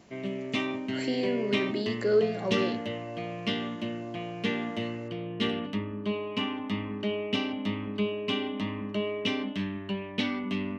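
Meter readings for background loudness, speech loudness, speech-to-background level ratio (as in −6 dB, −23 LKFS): −32.0 LKFS, −30.0 LKFS, 2.0 dB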